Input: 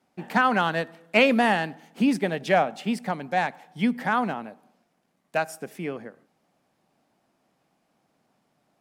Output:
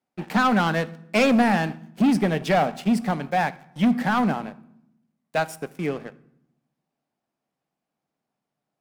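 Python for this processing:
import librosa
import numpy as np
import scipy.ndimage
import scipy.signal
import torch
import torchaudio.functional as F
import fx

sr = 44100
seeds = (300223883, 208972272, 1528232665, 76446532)

y = fx.dynamic_eq(x, sr, hz=190.0, q=1.1, threshold_db=-35.0, ratio=4.0, max_db=6)
y = fx.leveller(y, sr, passes=3)
y = fx.rev_fdn(y, sr, rt60_s=0.75, lf_ratio=1.6, hf_ratio=0.8, size_ms=41.0, drr_db=15.0)
y = y * librosa.db_to_amplitude(-8.0)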